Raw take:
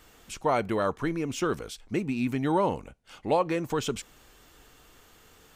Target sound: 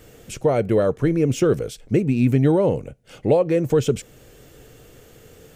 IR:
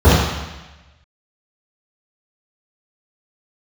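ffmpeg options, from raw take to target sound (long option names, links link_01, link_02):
-af "alimiter=limit=-19dB:level=0:latency=1:release=474,equalizer=frequency=125:width_type=o:width=1:gain=11,equalizer=frequency=500:width_type=o:width=1:gain=10,equalizer=frequency=1000:width_type=o:width=1:gain=-10,equalizer=frequency=4000:width_type=o:width=1:gain=-4,volume=6.5dB"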